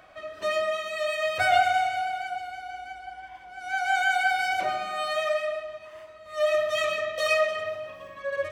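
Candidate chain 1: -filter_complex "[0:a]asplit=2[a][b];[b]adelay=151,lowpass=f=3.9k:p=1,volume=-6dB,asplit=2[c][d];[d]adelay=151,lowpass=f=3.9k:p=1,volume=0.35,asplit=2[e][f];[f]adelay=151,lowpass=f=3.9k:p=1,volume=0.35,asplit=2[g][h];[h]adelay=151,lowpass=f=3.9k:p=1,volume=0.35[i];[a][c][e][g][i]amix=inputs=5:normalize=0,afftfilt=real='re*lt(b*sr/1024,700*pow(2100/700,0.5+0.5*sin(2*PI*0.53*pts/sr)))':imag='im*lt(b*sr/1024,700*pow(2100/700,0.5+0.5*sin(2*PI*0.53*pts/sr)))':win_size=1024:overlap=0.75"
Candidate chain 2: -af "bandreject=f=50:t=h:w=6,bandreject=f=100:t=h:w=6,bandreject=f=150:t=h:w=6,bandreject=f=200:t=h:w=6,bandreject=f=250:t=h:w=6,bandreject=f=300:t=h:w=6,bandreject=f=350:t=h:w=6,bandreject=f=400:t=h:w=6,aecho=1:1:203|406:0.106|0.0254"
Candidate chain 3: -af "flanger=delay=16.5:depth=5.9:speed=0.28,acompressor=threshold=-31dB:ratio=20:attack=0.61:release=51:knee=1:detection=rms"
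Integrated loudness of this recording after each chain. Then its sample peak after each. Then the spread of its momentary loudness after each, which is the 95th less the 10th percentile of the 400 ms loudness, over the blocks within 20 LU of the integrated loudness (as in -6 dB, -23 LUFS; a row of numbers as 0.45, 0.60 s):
-27.5, -26.5, -37.0 LUFS; -13.0, -10.0, -27.5 dBFS; 15, 17, 9 LU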